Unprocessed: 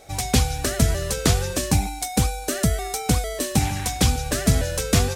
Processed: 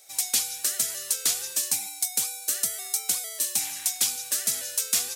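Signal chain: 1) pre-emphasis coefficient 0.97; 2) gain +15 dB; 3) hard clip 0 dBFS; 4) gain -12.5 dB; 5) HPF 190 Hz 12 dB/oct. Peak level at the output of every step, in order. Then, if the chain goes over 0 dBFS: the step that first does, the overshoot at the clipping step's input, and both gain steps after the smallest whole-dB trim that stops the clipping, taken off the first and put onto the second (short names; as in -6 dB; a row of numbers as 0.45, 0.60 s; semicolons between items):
-9.5, +5.5, 0.0, -12.5, -11.5 dBFS; step 2, 5.5 dB; step 2 +9 dB, step 4 -6.5 dB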